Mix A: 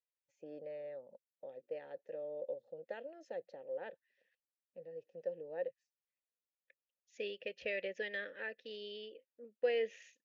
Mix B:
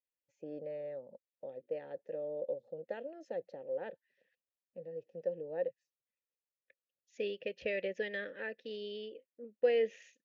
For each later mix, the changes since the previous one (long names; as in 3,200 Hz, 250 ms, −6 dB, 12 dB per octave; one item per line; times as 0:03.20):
master: add low-shelf EQ 450 Hz +9.5 dB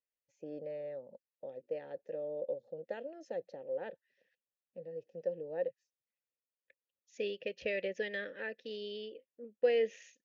master: add low-pass with resonance 6,600 Hz, resonance Q 1.8